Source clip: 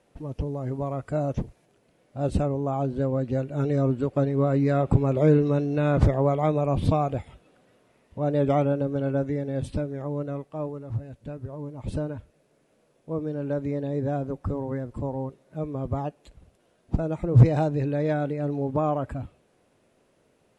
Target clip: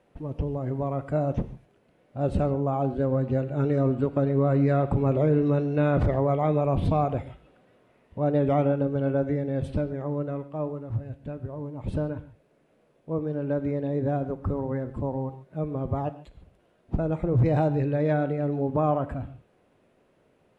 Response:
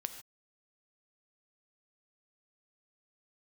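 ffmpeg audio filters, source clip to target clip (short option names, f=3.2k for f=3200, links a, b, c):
-filter_complex "[0:a]alimiter=limit=-16dB:level=0:latency=1:release=23,asplit=2[a][b];[1:a]atrim=start_sample=2205,lowpass=3.7k[c];[b][c]afir=irnorm=-1:irlink=0,volume=5dB[d];[a][d]amix=inputs=2:normalize=0,volume=-7dB"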